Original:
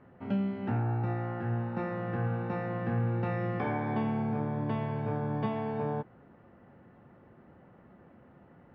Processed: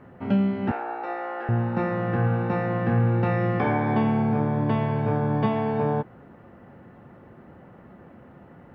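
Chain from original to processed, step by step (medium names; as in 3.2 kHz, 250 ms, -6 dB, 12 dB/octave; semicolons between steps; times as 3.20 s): 0.71–1.49 s: high-pass 430 Hz 24 dB/octave; trim +8.5 dB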